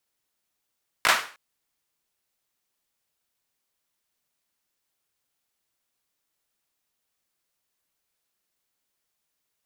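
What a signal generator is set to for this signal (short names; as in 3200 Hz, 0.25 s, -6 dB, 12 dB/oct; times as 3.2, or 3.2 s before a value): hand clap length 0.31 s, bursts 3, apart 18 ms, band 1400 Hz, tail 0.40 s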